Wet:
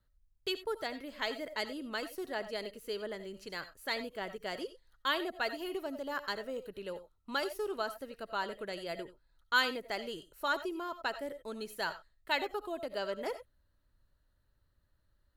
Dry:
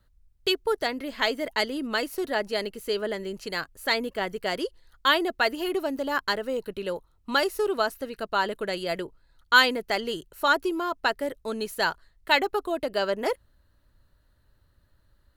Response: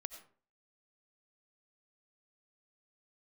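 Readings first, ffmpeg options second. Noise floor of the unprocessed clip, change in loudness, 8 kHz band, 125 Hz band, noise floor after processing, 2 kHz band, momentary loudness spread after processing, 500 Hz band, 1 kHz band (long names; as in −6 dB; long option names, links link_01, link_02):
−65 dBFS, −10.5 dB, −10.5 dB, −11.0 dB, −74 dBFS, −10.5 dB, 9 LU, −10.5 dB, −10.5 dB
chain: -filter_complex "[1:a]atrim=start_sample=2205,atrim=end_sample=4410[link_01];[0:a][link_01]afir=irnorm=-1:irlink=0,volume=-7dB"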